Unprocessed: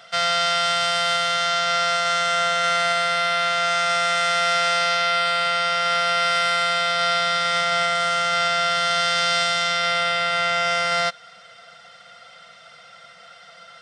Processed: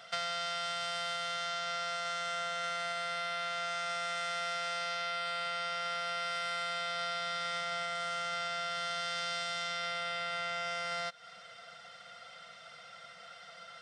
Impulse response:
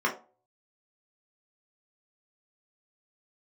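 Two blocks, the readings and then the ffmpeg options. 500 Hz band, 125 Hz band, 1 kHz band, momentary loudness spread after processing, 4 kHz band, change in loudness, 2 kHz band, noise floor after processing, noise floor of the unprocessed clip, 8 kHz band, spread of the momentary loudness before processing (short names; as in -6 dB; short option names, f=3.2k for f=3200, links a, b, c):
-15.5 dB, -15.5 dB, -15.5 dB, 15 LU, -15.5 dB, -15.5 dB, -15.5 dB, -53 dBFS, -47 dBFS, -15.5 dB, 1 LU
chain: -af "acompressor=threshold=-28dB:ratio=6,volume=-5.5dB"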